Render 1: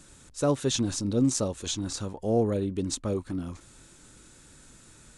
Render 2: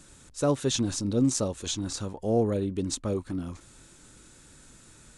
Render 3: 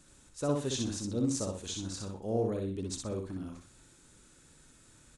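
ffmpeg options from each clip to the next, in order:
-af anull
-af "aecho=1:1:62|124|186|248:0.668|0.174|0.0452|0.0117,volume=-8dB"

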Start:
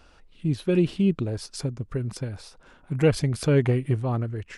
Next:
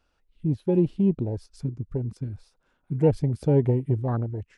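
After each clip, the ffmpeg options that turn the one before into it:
-af "afwtdn=0.0447"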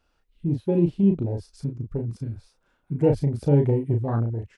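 -filter_complex "[0:a]asplit=2[a][b];[b]adelay=35,volume=-4.5dB[c];[a][c]amix=inputs=2:normalize=0"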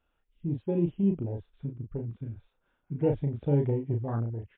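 -af "volume=-6dB" -ar 8000 -c:a libmp3lame -b:a 32k

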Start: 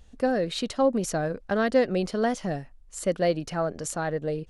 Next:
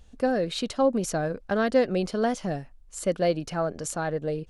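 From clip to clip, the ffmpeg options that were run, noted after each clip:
-af "bandreject=f=1.9k:w=19"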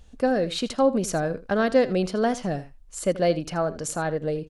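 -af "aecho=1:1:81:0.15,volume=2dB"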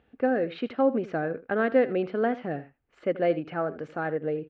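-af "highpass=180,equalizer=f=190:t=q:w=4:g=-7,equalizer=f=610:t=q:w=4:g=-5,equalizer=f=1k:t=q:w=4:g=-8,lowpass=f=2.4k:w=0.5412,lowpass=f=2.4k:w=1.3066"

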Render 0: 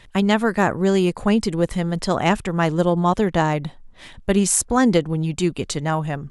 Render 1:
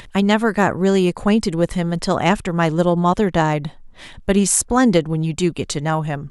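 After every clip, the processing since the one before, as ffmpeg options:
-af "acompressor=mode=upward:threshold=-36dB:ratio=2.5,volume=2dB"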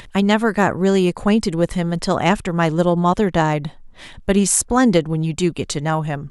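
-af anull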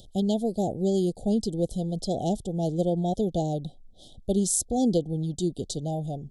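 -af "asuperstop=centerf=1600:order=20:qfactor=0.65,volume=-8.5dB"

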